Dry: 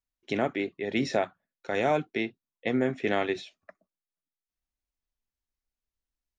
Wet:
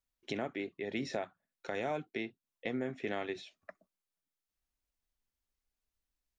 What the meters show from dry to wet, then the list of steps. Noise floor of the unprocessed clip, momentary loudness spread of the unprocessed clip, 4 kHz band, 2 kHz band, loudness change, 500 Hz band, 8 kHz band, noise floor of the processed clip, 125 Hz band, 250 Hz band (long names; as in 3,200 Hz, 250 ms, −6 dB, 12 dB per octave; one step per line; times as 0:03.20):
below −85 dBFS, 9 LU, −8.0 dB, −9.0 dB, −9.5 dB, −9.5 dB, can't be measured, below −85 dBFS, −9.5 dB, −9.5 dB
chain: downward compressor 2 to 1, threshold −43 dBFS, peak gain reduction 12.5 dB
level +1 dB